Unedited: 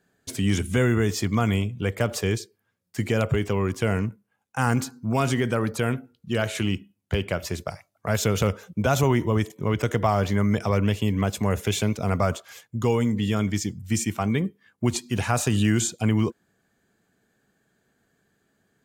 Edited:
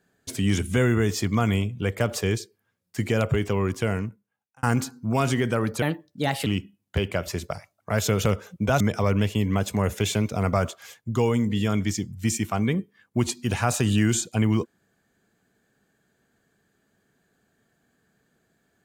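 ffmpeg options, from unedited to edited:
ffmpeg -i in.wav -filter_complex "[0:a]asplit=5[link_01][link_02][link_03][link_04][link_05];[link_01]atrim=end=4.63,asetpts=PTS-STARTPTS,afade=type=out:start_time=3.73:duration=0.9[link_06];[link_02]atrim=start=4.63:end=5.824,asetpts=PTS-STARTPTS,afade=type=in:duration=0.004:curve=hsin[link_07];[link_03]atrim=start=5.82:end=6.63,asetpts=PTS-STARTPTS,asetrate=55566,aresample=44100[link_08];[link_04]atrim=start=6.626:end=8.972[link_09];[link_05]atrim=start=10.468[link_10];[link_06][link_07]concat=n=2:v=0:a=1[link_11];[link_11][link_08]acrossfade=duration=0.004:curve1=hsin:curve2=hsin[link_12];[link_12][link_09]acrossfade=duration=0.004:curve1=hsin:curve2=hsin[link_13];[link_13][link_10]acrossfade=duration=0.004:curve1=hsin:curve2=hsin" out.wav

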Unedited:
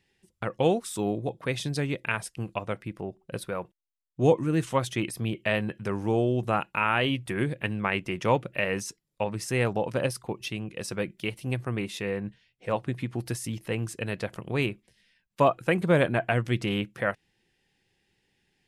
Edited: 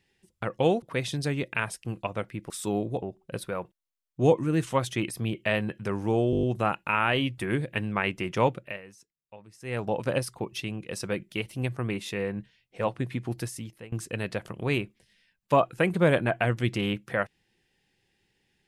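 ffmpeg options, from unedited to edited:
ffmpeg -i in.wav -filter_complex "[0:a]asplit=13[link_01][link_02][link_03][link_04][link_05][link_06][link_07][link_08][link_09][link_10][link_11][link_12][link_13];[link_01]atrim=end=0.822[link_14];[link_02]atrim=start=1.338:end=3.022[link_15];[link_03]atrim=start=0.818:end=1.342[link_16];[link_04]atrim=start=3.018:end=6.332[link_17];[link_05]atrim=start=6.308:end=6.332[link_18];[link_06]atrim=start=6.308:end=6.332[link_19];[link_07]atrim=start=6.308:end=6.332[link_20];[link_08]atrim=start=6.308:end=6.332[link_21];[link_09]atrim=start=6.308:end=6.332[link_22];[link_10]atrim=start=6.308:end=8.7,asetpts=PTS-STARTPTS,afade=type=out:start_time=2.052:duration=0.34:silence=0.112202[link_23];[link_11]atrim=start=8.7:end=9.48,asetpts=PTS-STARTPTS,volume=-19dB[link_24];[link_12]atrim=start=9.48:end=13.8,asetpts=PTS-STARTPTS,afade=type=in:duration=0.34:silence=0.112202,afade=type=out:start_time=3.74:duration=0.58:silence=0.0749894[link_25];[link_13]atrim=start=13.8,asetpts=PTS-STARTPTS,afade=type=in:duration=0.004:curve=hsin:silence=0.0749894[link_26];[link_14][link_15]acrossfade=duration=0.004:curve1=hsin:curve2=hsin[link_27];[link_27][link_16]acrossfade=duration=0.004:curve1=hsin:curve2=hsin[link_28];[link_28][link_17]acrossfade=duration=0.004:curve1=hsin:curve2=hsin[link_29];[link_29][link_18]acrossfade=duration=0.004:curve1=hsin:curve2=hsin[link_30];[link_30][link_19]acrossfade=duration=0.004:curve1=hsin:curve2=hsin[link_31];[link_31][link_20]acrossfade=duration=0.004:curve1=hsin:curve2=hsin[link_32];[link_32][link_21]acrossfade=duration=0.004:curve1=hsin:curve2=hsin[link_33];[link_33][link_22]acrossfade=duration=0.004:curve1=hsin:curve2=hsin[link_34];[link_23][link_24][link_25][link_26]concat=n=4:v=0:a=1[link_35];[link_34][link_35]acrossfade=duration=0.004:curve1=hsin:curve2=hsin" out.wav

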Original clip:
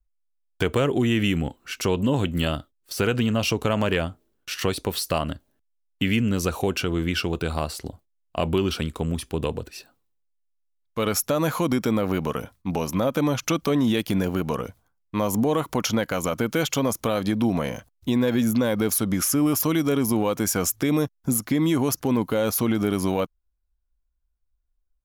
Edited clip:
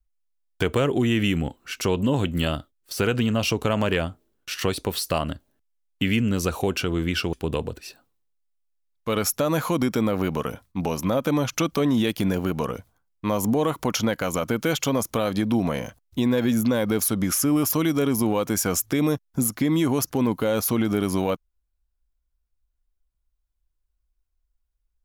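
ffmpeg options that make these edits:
ffmpeg -i in.wav -filter_complex "[0:a]asplit=2[link_01][link_02];[link_01]atrim=end=7.332[link_03];[link_02]atrim=start=9.228[link_04];[link_03][link_04]acrossfade=duration=0.004:curve1=hsin:curve2=hsin" out.wav

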